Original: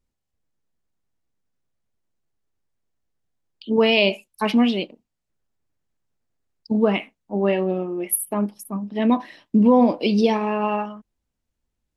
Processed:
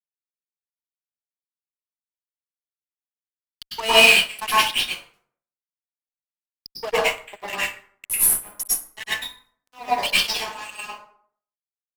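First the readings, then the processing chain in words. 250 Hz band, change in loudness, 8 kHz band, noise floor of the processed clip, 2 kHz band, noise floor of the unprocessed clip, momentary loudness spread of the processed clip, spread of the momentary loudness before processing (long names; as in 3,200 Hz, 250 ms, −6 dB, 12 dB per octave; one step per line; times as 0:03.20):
−21.5 dB, +2.0 dB, +9.0 dB, below −85 dBFS, +8.5 dB, −80 dBFS, 21 LU, 11 LU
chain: first difference
on a send: tape delay 222 ms, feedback 51%, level −13 dB, low-pass 3,300 Hz
on the sum: transient designer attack +9 dB, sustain −4 dB
bit-depth reduction 10 bits, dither none
auto-filter high-pass sine 2 Hz 580–3,400 Hz
fuzz pedal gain 31 dB, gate −37 dBFS
dense smooth reverb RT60 0.56 s, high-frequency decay 0.6×, pre-delay 90 ms, DRR −9 dB
expander for the loud parts 1.5 to 1, over −23 dBFS
level −4 dB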